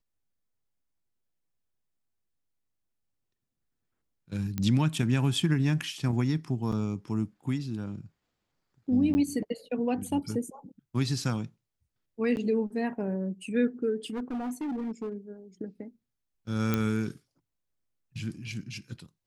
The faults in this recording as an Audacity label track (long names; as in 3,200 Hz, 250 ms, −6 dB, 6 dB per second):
4.580000	4.580000	click −17 dBFS
6.720000	6.720000	drop-out 4.9 ms
9.140000	9.150000	drop-out 10 ms
12.360000	12.370000	drop-out 9.7 ms
14.050000	15.140000	clipping −30 dBFS
16.740000	16.740000	click −13 dBFS